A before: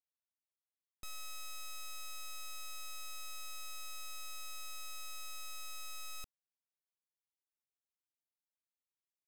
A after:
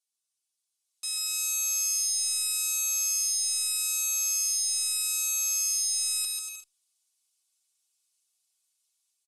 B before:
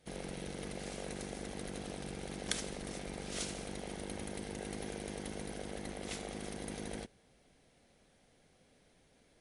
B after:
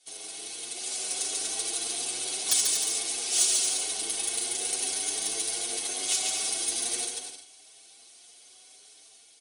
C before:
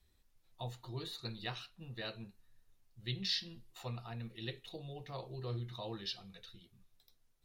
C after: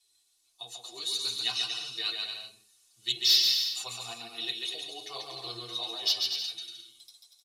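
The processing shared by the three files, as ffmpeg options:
-filter_complex "[0:a]lowpass=f=10000:w=0.5412,lowpass=f=10000:w=1.3066,equalizer=f=1800:t=o:w=0.52:g=-9.5,aeval=exprs='0.211*sin(PI/2*3.16*val(0)/0.211)':c=same,aecho=1:1:2.7:0.6,dynaudnorm=f=650:g=3:m=2.51,aderivative,asoftclip=type=tanh:threshold=0.188,aecho=1:1:140|238|306.6|354.6|388.2:0.631|0.398|0.251|0.158|0.1,asplit=2[s0][s1];[s1]adelay=7.5,afreqshift=0.8[s2];[s0][s2]amix=inputs=2:normalize=1,volume=1.33"

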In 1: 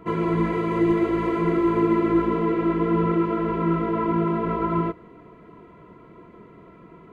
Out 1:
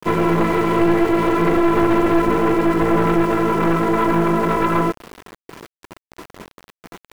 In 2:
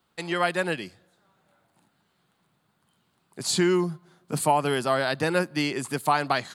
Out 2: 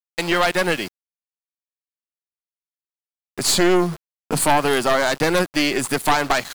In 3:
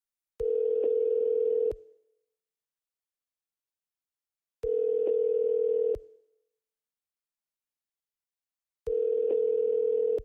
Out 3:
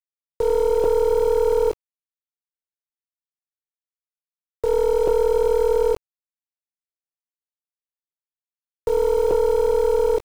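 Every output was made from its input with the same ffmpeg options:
-filter_complex "[0:a]agate=range=0.398:threshold=0.00501:ratio=16:detection=peak,lowshelf=f=150:g=-8,asplit=2[s0][s1];[s1]acompressor=threshold=0.02:ratio=6,volume=1.33[s2];[s0][s2]amix=inputs=2:normalize=0,aeval=exprs='0.473*(cos(1*acos(clip(val(0)/0.473,-1,1)))-cos(1*PI/2))+0.211*(cos(5*acos(clip(val(0)/0.473,-1,1)))-cos(5*PI/2))+0.188*(cos(6*acos(clip(val(0)/0.473,-1,1)))-cos(6*PI/2))+0.0299*(cos(8*acos(clip(val(0)/0.473,-1,1)))-cos(8*PI/2))':c=same,aeval=exprs='val(0)*gte(abs(val(0)),0.0447)':c=same,volume=0.631"

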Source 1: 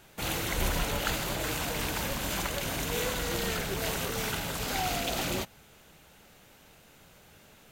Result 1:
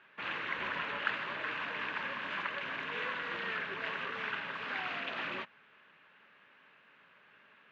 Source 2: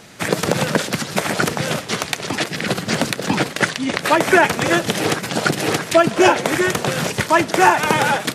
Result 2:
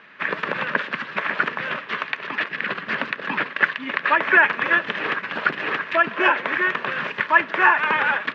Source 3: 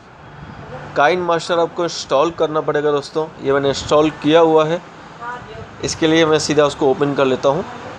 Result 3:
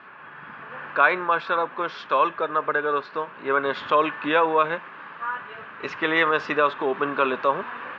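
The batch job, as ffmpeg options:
-af "highpass=310,equalizer=f=330:t=q:w=4:g=-6,equalizer=f=490:t=q:w=4:g=-5,equalizer=f=740:t=q:w=4:g=-9,equalizer=f=1100:t=q:w=4:g=7,equalizer=f=1700:t=q:w=4:g=9,equalizer=f=2600:t=q:w=4:g=4,lowpass=f=3000:w=0.5412,lowpass=f=3000:w=1.3066,volume=0.562"

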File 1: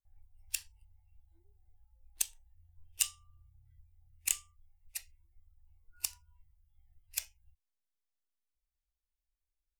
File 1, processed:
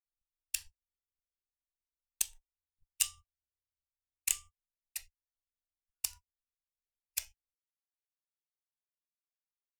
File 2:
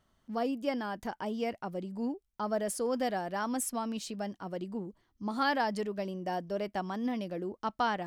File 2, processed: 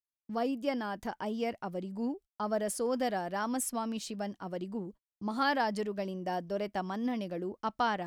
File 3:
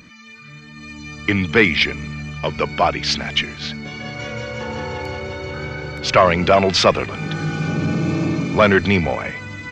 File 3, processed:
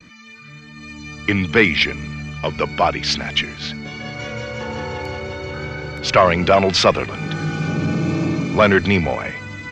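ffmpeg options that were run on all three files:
-af "agate=range=0.00708:threshold=0.00398:ratio=16:detection=peak"

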